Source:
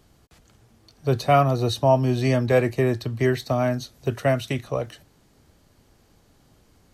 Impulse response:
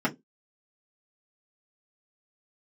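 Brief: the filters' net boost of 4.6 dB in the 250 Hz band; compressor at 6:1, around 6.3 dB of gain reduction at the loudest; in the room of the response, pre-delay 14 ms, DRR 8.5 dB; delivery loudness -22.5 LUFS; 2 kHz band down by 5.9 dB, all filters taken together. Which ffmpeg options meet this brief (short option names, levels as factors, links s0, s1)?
-filter_complex "[0:a]equalizer=f=250:t=o:g=5.5,equalizer=f=2000:t=o:g=-7.5,acompressor=threshold=0.112:ratio=6,asplit=2[s0][s1];[1:a]atrim=start_sample=2205,adelay=14[s2];[s1][s2]afir=irnorm=-1:irlink=0,volume=0.106[s3];[s0][s3]amix=inputs=2:normalize=0,volume=1.33"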